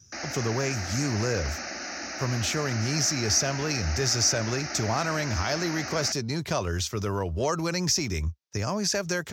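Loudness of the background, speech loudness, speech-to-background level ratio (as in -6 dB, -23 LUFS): -34.0 LUFS, -27.5 LUFS, 6.5 dB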